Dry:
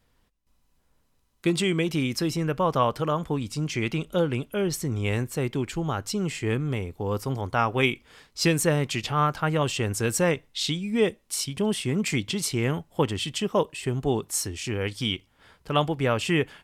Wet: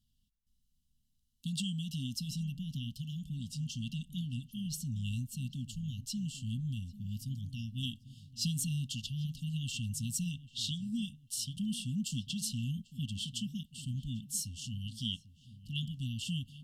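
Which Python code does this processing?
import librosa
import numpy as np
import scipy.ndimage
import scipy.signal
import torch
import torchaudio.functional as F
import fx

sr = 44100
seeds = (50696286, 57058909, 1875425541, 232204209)

y = fx.brickwall_bandstop(x, sr, low_hz=260.0, high_hz=2700.0)
y = fx.echo_filtered(y, sr, ms=794, feedback_pct=39, hz=1500.0, wet_db=-14.5)
y = F.gain(torch.from_numpy(y), -8.0).numpy()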